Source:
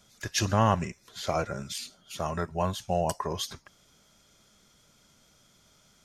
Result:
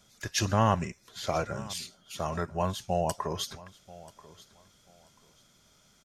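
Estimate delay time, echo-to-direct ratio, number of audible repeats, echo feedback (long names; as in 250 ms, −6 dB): 986 ms, −20.0 dB, 2, 23%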